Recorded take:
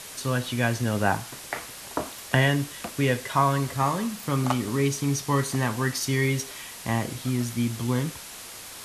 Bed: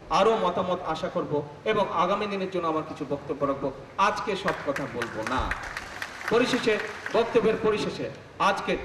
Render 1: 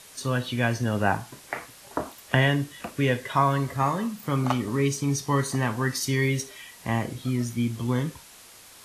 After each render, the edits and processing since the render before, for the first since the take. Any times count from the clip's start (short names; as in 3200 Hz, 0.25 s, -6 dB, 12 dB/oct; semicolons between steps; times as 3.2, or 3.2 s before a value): noise print and reduce 8 dB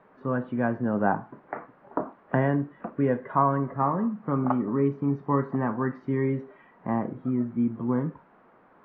LPF 1400 Hz 24 dB/oct; resonant low shelf 130 Hz -10.5 dB, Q 1.5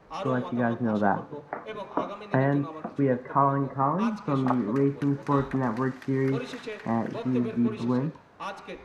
add bed -13 dB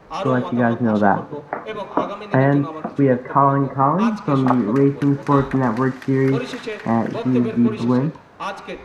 gain +8.5 dB; limiter -2 dBFS, peak gain reduction 2 dB